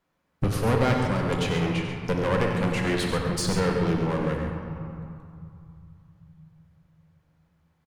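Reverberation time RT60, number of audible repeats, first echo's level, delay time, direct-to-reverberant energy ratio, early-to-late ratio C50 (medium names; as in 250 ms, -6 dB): 2.5 s, 2, -10.0 dB, 93 ms, 0.0 dB, 1.5 dB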